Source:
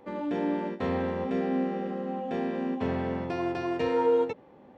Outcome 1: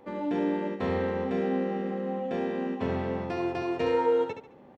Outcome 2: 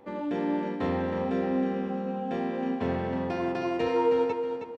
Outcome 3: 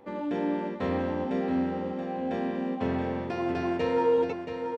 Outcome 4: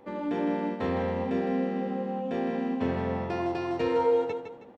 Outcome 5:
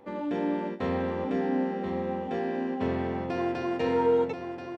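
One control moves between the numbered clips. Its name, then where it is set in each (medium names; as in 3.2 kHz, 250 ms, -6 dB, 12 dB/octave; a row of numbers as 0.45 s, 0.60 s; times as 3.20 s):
feedback delay, time: 71 ms, 317 ms, 677 ms, 159 ms, 1033 ms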